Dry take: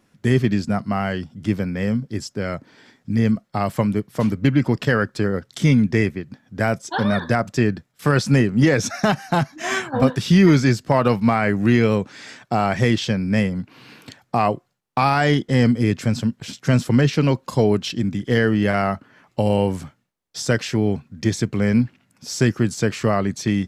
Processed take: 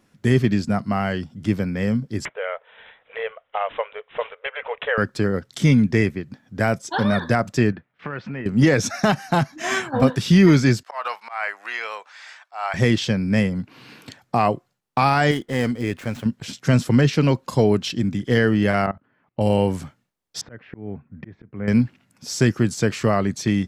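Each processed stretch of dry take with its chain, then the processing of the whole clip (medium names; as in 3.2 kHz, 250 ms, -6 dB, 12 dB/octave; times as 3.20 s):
2.25–4.98 s: brick-wall FIR high-pass 430 Hz + careless resampling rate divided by 6×, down none, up filtered + three bands compressed up and down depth 40%
7.72–8.46 s: compression, threshold -23 dBFS + low-pass 2.5 kHz 24 dB/octave + tilt EQ +2 dB/octave
10.83–12.74 s: high-pass 790 Hz 24 dB/octave + treble shelf 4.4 kHz -9.5 dB + slow attack 152 ms
15.31–16.26 s: median filter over 9 samples + peaking EQ 150 Hz -9.5 dB 2.1 oct
18.86–19.41 s: level held to a coarse grid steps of 21 dB + distance through air 380 m
20.41–21.68 s: low-pass 2.1 kHz 24 dB/octave + slow attack 547 ms
whole clip: none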